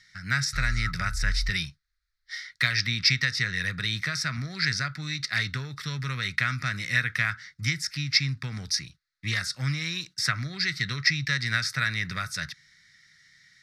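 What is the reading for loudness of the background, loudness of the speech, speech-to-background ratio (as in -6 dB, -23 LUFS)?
-35.0 LUFS, -27.5 LUFS, 7.5 dB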